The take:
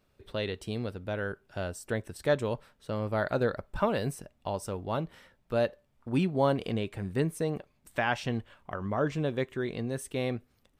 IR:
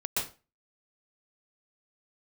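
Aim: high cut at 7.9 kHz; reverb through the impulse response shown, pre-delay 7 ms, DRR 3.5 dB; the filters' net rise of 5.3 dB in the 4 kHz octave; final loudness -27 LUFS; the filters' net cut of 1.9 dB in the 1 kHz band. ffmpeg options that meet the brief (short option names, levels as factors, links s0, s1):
-filter_complex "[0:a]lowpass=7900,equalizer=f=1000:t=o:g=-3,equalizer=f=4000:t=o:g=7,asplit=2[s0][s1];[1:a]atrim=start_sample=2205,adelay=7[s2];[s1][s2]afir=irnorm=-1:irlink=0,volume=0.316[s3];[s0][s3]amix=inputs=2:normalize=0,volume=1.5"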